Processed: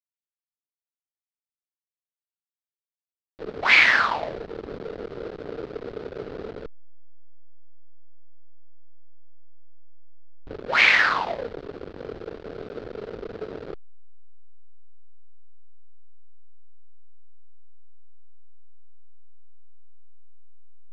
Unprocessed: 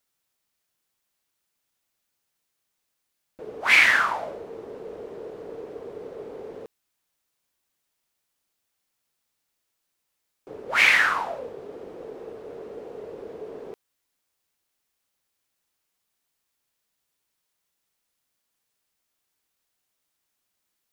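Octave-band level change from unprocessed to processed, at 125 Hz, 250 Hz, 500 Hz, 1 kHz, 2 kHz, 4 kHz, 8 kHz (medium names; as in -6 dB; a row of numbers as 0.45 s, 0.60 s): +8.5 dB, +5.0 dB, +2.5 dB, +2.0 dB, +1.0 dB, +2.0 dB, -6.0 dB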